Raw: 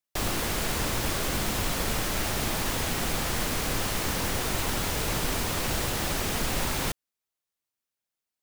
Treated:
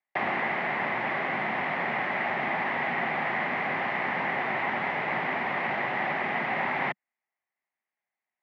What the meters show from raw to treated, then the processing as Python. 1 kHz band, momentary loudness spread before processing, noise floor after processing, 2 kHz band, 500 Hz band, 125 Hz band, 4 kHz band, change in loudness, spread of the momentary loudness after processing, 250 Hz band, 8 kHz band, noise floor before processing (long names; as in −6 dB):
+5.5 dB, 0 LU, below −85 dBFS, +6.5 dB, +0.5 dB, −10.5 dB, −11.5 dB, 0.0 dB, 1 LU, −3.5 dB, below −35 dB, below −85 dBFS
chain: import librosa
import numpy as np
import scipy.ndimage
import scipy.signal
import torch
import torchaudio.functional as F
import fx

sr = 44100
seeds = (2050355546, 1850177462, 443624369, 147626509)

y = fx.rider(x, sr, range_db=10, speed_s=0.5)
y = fx.cabinet(y, sr, low_hz=190.0, low_slope=24, high_hz=2200.0, hz=(200.0, 300.0, 470.0, 780.0, 1400.0, 2000.0), db=(-5, -10, -9, 6, -5, 10))
y = F.gain(torch.from_numpy(y), 3.5).numpy()